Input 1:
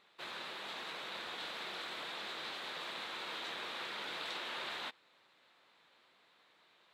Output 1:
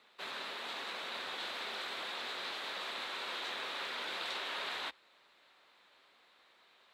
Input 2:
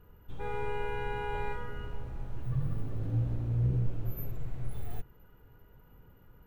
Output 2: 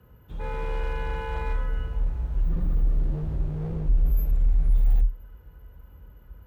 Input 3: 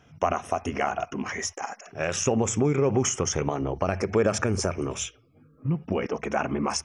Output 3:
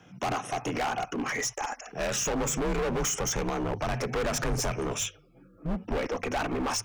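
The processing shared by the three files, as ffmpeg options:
ffmpeg -i in.wav -af "afreqshift=36,volume=28.5dB,asoftclip=hard,volume=-28.5dB,asubboost=boost=5.5:cutoff=61,volume=2.5dB" out.wav

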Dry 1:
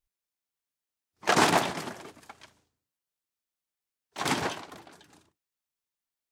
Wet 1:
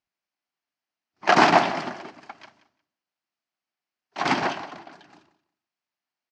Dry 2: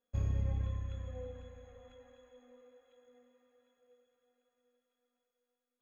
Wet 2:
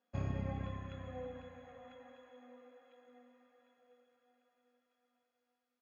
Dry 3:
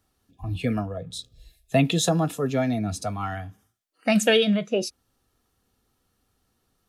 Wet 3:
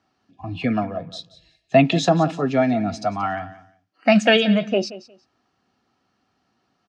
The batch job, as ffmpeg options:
ffmpeg -i in.wav -af "highpass=170,equalizer=frequency=470:width_type=q:width=4:gain=-8,equalizer=frequency=710:width_type=q:width=4:gain=4,equalizer=frequency=3600:width_type=q:width=4:gain=-7,lowpass=frequency=5000:width=0.5412,lowpass=frequency=5000:width=1.3066,aecho=1:1:179|358:0.15|0.0284,volume=6dB" out.wav

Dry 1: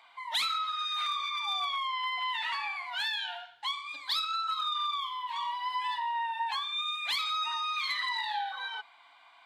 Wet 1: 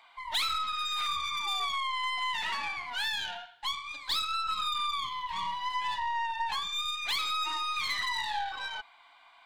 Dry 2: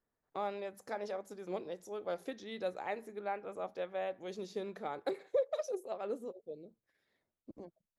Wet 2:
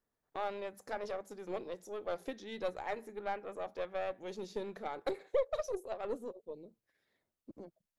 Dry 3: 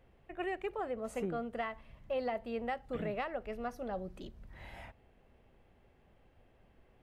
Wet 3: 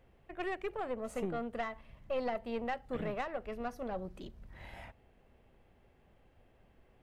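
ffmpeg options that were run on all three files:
ffmpeg -i in.wav -af "aeval=exprs='0.0891*(cos(1*acos(clip(val(0)/0.0891,-1,1)))-cos(1*PI/2))+0.00562*(cos(4*acos(clip(val(0)/0.0891,-1,1)))-cos(4*PI/2))+0.00316*(cos(8*acos(clip(val(0)/0.0891,-1,1)))-cos(8*PI/2))':channel_layout=same" out.wav

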